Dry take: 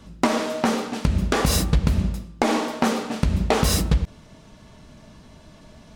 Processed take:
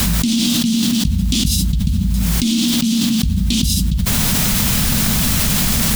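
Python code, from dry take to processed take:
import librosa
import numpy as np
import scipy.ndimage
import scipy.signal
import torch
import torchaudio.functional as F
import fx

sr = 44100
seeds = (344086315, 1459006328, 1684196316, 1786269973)

y = scipy.signal.sosfilt(scipy.signal.ellip(3, 1.0, 40, [230.0, 3200.0], 'bandstop', fs=sr, output='sos'), x)
y = fx.dmg_noise_colour(y, sr, seeds[0], colour='white', level_db=-49.0)
y = fx.env_flatten(y, sr, amount_pct=100)
y = y * 10.0 ** (-1.0 / 20.0)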